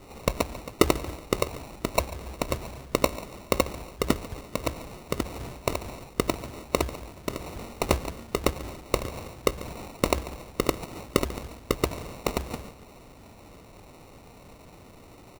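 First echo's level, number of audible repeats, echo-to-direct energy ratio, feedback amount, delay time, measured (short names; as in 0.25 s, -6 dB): -18.0 dB, 2, -17.5 dB, 33%, 0.142 s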